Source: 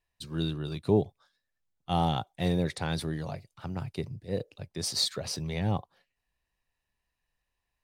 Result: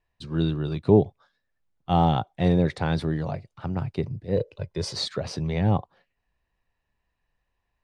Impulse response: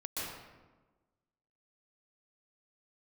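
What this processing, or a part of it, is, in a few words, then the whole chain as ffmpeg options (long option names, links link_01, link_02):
through cloth: -filter_complex "[0:a]asettb=1/sr,asplit=3[link_01][link_02][link_03];[link_01]atrim=end=4.364[link_04];[link_02]atrim=start=4.36:end=4.95,asetpts=PTS-STARTPTS,afade=type=in:duration=0.004:curve=qsin,afade=type=out:start_time=0.586:duration=0.004:curve=qsin,aecho=1:1:2:0.65,atrim=end_sample=26019[link_05];[link_03]atrim=start=4.946[link_06];[link_04][link_05]acrossfade=duration=0.004:curve1=hsin:curve2=qsin[link_07];[link_07][link_06]acrossfade=duration=0.004:curve1=qsin:curve2=hsin,lowpass=7700,highshelf=frequency=3200:gain=-13,volume=7dB"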